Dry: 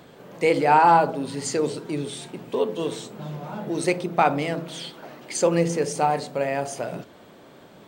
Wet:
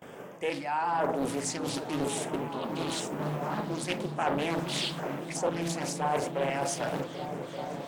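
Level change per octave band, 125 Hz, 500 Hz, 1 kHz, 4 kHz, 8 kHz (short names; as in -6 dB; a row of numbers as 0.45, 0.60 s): -5.0, -8.0, -10.0, 0.0, -3.0 dB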